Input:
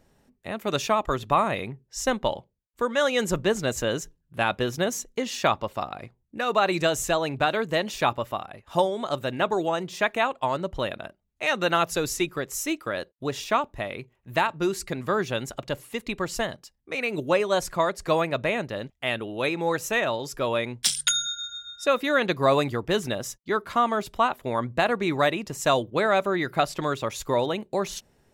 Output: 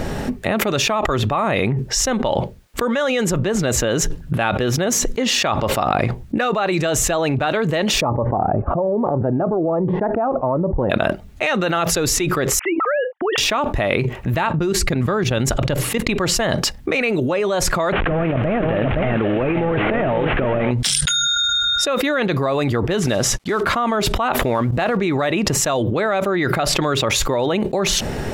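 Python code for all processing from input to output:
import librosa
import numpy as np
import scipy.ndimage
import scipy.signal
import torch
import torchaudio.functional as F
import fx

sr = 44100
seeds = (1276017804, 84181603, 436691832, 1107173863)

y = fx.chain(x, sr, fx.lowpass(hz=1000.0, slope=24),
    fx.notch_cascade(direction='falling', hz=1.2), at=(8.01, 10.9))
y = fx.chain(y, sr, fx.sine_speech(),
    fx.lowpass(hz=2100.0, slope=12),
    fx.low_shelf(hz=390.0, db=-6.5), at=(12.59, 13.38))
y = fx.chain(y, sr, fx.low_shelf(hz=150.0, db=9.5),
    fx.level_steps(step_db=14), at=(14.34, 16.09))
y = fx.chain(y, sr, fx.delta_mod(bps=16000, step_db=-36.5),
    fx.echo_single(ms=518, db=-9.5),
    fx.over_compress(threshold_db=-33.0, ratio=-0.5), at=(17.92, 20.71))
y = fx.chain(y, sr, fx.block_float(bits=5),
    fx.lowpass(hz=11000.0, slope=12), at=(23.0, 23.64))
y = fx.chain(y, sr, fx.law_mismatch(coded='mu'),
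    fx.level_steps(step_db=18), at=(24.42, 24.97))
y = fx.high_shelf(y, sr, hz=5200.0, db=-10.0)
y = fx.notch(y, sr, hz=1000.0, q=15.0)
y = fx.env_flatten(y, sr, amount_pct=100)
y = y * 10.0 ** (-1.5 / 20.0)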